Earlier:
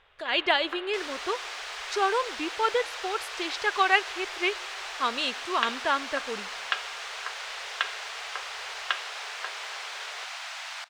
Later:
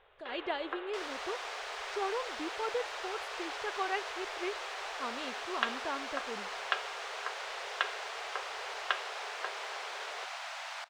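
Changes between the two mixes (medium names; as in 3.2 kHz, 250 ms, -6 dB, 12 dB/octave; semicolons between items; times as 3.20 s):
speech -11.5 dB; master: add tilt shelf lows +7 dB, about 910 Hz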